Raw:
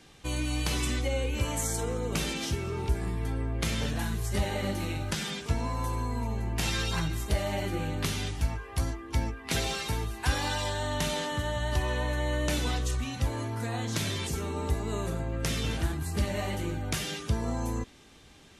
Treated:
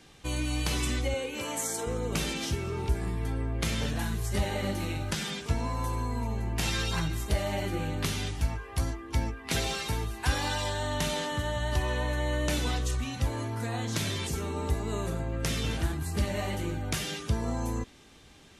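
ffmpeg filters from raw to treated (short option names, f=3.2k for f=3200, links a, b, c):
-filter_complex "[0:a]asettb=1/sr,asplit=3[a][b][c];[a]atrim=end=1.144[d];[b]atrim=start=1.14:end=1.87,asetpts=PTS-STARTPTS,afade=t=in:d=0.004:c=qsin,afade=t=out:st=0.726:d=0.004:c=qsin,highpass=250[e];[c]atrim=start=1.866[f];[d][e]acrossfade=d=0.004:c1=hsin:c2=qsin[g];[g][f]acrossfade=d=0.004:c1=qsin:c2=hsin"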